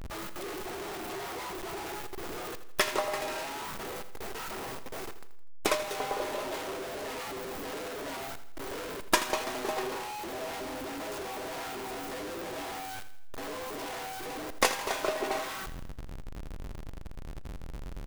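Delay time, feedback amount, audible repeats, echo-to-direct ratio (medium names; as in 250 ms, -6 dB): 82 ms, 47%, 4, -12.0 dB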